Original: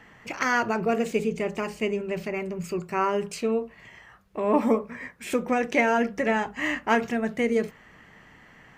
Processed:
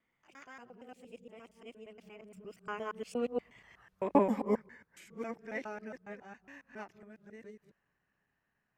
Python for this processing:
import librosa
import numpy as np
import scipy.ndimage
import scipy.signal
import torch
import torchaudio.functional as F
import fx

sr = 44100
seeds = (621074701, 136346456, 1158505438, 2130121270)

y = fx.local_reverse(x, sr, ms=127.0)
y = fx.doppler_pass(y, sr, speed_mps=29, closest_m=13.0, pass_at_s=3.76)
y = fx.upward_expand(y, sr, threshold_db=-40.0, expansion=1.5)